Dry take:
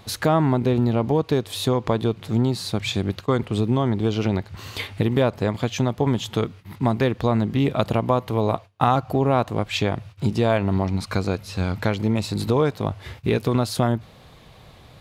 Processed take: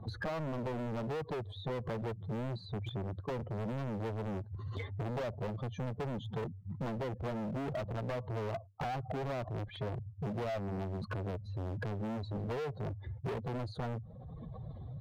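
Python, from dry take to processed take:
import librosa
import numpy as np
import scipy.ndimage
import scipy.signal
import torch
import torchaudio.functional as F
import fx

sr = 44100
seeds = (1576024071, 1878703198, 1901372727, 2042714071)

y = fx.spec_expand(x, sr, power=2.3)
y = 10.0 ** (-18.0 / 20.0) * (np.abs((y / 10.0 ** (-18.0 / 20.0) + 3.0) % 4.0 - 2.0) - 1.0)
y = np.convolve(y, np.full(17, 1.0 / 17))[:len(y)]
y = np.clip(y, -10.0 ** (-31.0 / 20.0), 10.0 ** (-31.0 / 20.0))
y = fx.dynamic_eq(y, sr, hz=600.0, q=1.3, threshold_db=-46.0, ratio=4.0, max_db=5)
y = fx.band_squash(y, sr, depth_pct=70)
y = y * 10.0 ** (-6.5 / 20.0)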